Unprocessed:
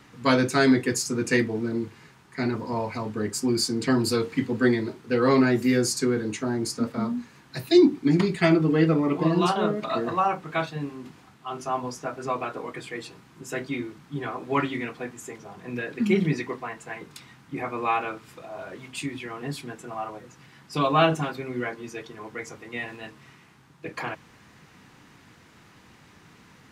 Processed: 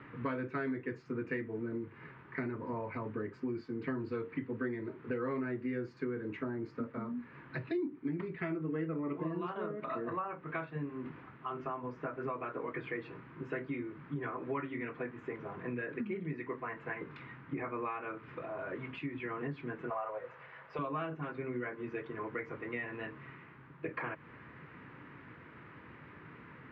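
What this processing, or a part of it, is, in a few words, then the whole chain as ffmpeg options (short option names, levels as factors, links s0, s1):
bass amplifier: -filter_complex "[0:a]acompressor=threshold=0.0141:ratio=6,highpass=72,equalizer=f=91:t=q:w=4:g=-4,equalizer=f=200:t=q:w=4:g=-7,equalizer=f=760:t=q:w=4:g=-9,lowpass=f=2200:w=0.5412,lowpass=f=2200:w=1.3066,asettb=1/sr,asplit=3[s0][s1][s2];[s0]atrim=end=19.904[s3];[s1]atrim=start=19.9:end=20.79,asetpts=PTS-STARTPTS,afade=t=in:d=0.004:c=qsin,afade=t=out:st=0.886:d=0.004:c=qsin,lowshelf=f=400:t=q:w=3:g=-10.5[s4];[s2]atrim=start=20.786[s5];[s3][s4]acrossfade=d=0.004:c1=hsin:c2=qsin[s6];[s6][s5]acrossfade=d=0.004:c1=qsin:c2=hsin,volume=1.41"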